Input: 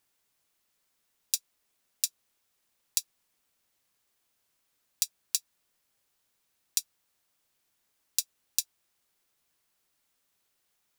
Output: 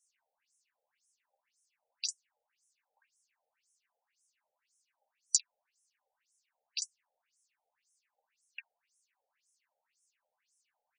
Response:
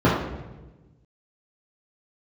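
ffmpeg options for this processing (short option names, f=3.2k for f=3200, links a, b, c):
-af "superequalizer=10b=0.447:13b=0.282:14b=0.631,aecho=1:1:13|49:0.501|0.237,afftfilt=real='re*between(b*sr/1024,600*pow(7600/600,0.5+0.5*sin(2*PI*1.9*pts/sr))/1.41,600*pow(7600/600,0.5+0.5*sin(2*PI*1.9*pts/sr))*1.41)':imag='im*between(b*sr/1024,600*pow(7600/600,0.5+0.5*sin(2*PI*1.9*pts/sr))/1.41,600*pow(7600/600,0.5+0.5*sin(2*PI*1.9*pts/sr))*1.41)':win_size=1024:overlap=0.75,volume=5dB"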